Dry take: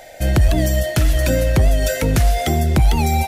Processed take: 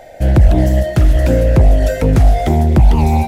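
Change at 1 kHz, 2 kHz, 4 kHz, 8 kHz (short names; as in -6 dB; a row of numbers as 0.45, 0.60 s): +3.0, -2.5, -5.5, -7.5 dB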